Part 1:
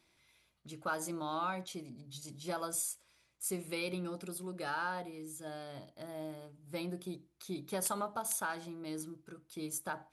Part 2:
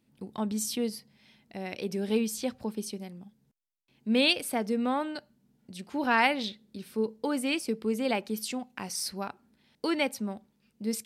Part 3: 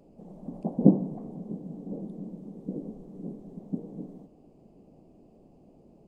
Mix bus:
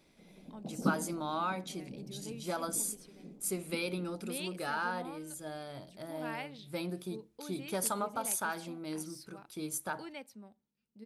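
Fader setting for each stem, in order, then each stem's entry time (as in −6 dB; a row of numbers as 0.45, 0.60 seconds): +2.0, −18.0, −12.5 decibels; 0.00, 0.15, 0.00 seconds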